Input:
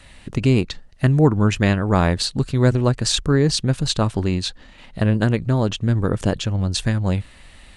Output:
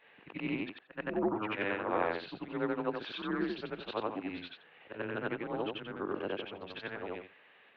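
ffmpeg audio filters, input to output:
ffmpeg -i in.wav -af "afftfilt=real='re':imag='-im':win_size=8192:overlap=0.75,highpass=frequency=390:width_type=q:width=0.5412,highpass=frequency=390:width_type=q:width=1.307,lowpass=frequency=3100:width_type=q:width=0.5176,lowpass=frequency=3100:width_type=q:width=0.7071,lowpass=frequency=3100:width_type=q:width=1.932,afreqshift=-99,volume=-5dB" out.wav

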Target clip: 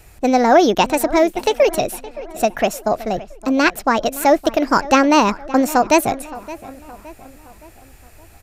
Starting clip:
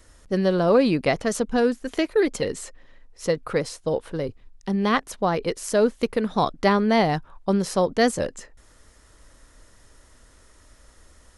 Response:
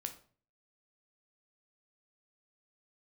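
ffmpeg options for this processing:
-filter_complex "[0:a]asplit=2[link_01][link_02];[link_02]adelay=767,lowpass=frequency=2400:poles=1,volume=-17.5dB,asplit=2[link_03][link_04];[link_04]adelay=767,lowpass=frequency=2400:poles=1,volume=0.49,asplit=2[link_05][link_06];[link_06]adelay=767,lowpass=frequency=2400:poles=1,volume=0.49,asplit=2[link_07][link_08];[link_08]adelay=767,lowpass=frequency=2400:poles=1,volume=0.49[link_09];[link_01][link_03][link_05][link_07][link_09]amix=inputs=5:normalize=0,asetrate=59535,aresample=44100,volume=6.5dB"

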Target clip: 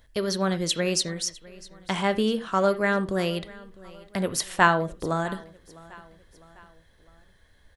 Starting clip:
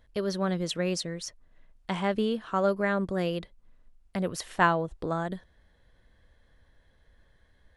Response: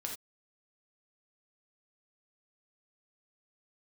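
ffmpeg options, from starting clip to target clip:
-filter_complex "[0:a]highshelf=frequency=2700:gain=12,aecho=1:1:654|1308|1962:0.0841|0.0412|0.0202,asplit=2[link_01][link_02];[1:a]atrim=start_sample=2205,lowpass=2700[link_03];[link_02][link_03]afir=irnorm=-1:irlink=0,volume=-6.5dB[link_04];[link_01][link_04]amix=inputs=2:normalize=0"

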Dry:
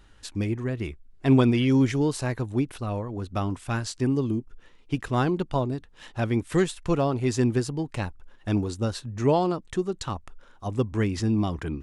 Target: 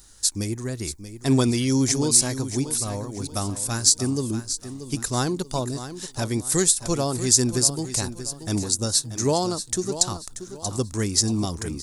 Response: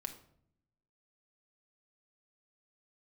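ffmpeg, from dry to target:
-af "aecho=1:1:633|1266|1899|2532:0.266|0.0905|0.0308|0.0105,aexciter=amount=9.8:drive=6.6:freq=4300,volume=-1dB"

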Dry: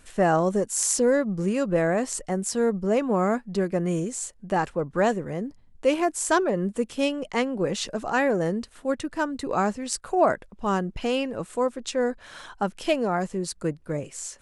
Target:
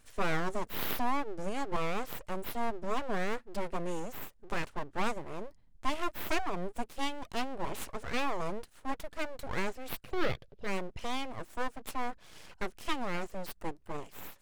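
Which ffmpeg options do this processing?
ffmpeg -i in.wav -filter_complex "[0:a]aeval=exprs='abs(val(0))':channel_layout=same,asettb=1/sr,asplit=3[link_01][link_02][link_03];[link_01]atrim=end=10.054[link_04];[link_02]atrim=start=10.05:end=10.67,asetpts=PTS-STARTPTS,afade=type=in:duration=0.004:curve=qsin,afade=type=out:start_time=0.616:duration=0.004:curve=qsin,equalizer=frequency=125:width_type=o:width=1:gain=7,equalizer=frequency=250:width_type=o:width=1:gain=-5,equalizer=frequency=500:width_type=o:width=1:gain=8,equalizer=frequency=1000:width_type=o:width=1:gain=-10,equalizer=frequency=4000:width_type=o:width=1:gain=5,equalizer=frequency=8000:width_type=o:width=1:gain=-8[link_05];[link_03]atrim=start=10.666[link_06];[link_04][link_05]acrossfade=duration=0.004:curve1=hsin:curve2=qsin[link_07];[link_07][link_06]acrossfade=duration=0.004:curve1=qsin:curve2=hsin,volume=-7dB" out.wav

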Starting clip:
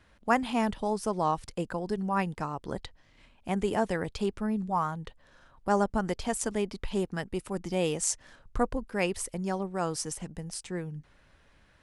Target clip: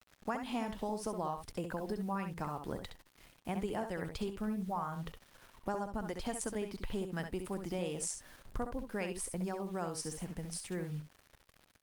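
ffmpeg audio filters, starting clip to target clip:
ffmpeg -i in.wav -filter_complex "[0:a]asettb=1/sr,asplit=3[link_01][link_02][link_03];[link_01]atrim=end=10.014[link_04];[link_02]atrim=start=10.01:end=10.46,asetpts=PTS-STARTPTS,afade=type=in:duration=0.004:curve=qsin,afade=type=out:start_time=0.446:duration=0.004:curve=qsin,acrossover=split=7000[link_05][link_06];[link_06]acompressor=threshold=-45dB:ratio=4:attack=1:release=60[link_07];[link_05][link_07]amix=inputs=2:normalize=0[link_08];[link_03]atrim=start=10.456[link_09];[link_04][link_08]acrossfade=duration=0.004:curve1=hsin:curve2=qsin[link_10];[link_10][link_09]acrossfade=duration=0.004:curve1=qsin:curve2=hsin,acrusher=bits=8:mix=0:aa=0.000001,acompressor=threshold=-31dB:ratio=8,aecho=1:1:66|77:0.422|0.133,volume=-2.5dB" -ar 48000 -c:a libopus -b:a 48k out.opus

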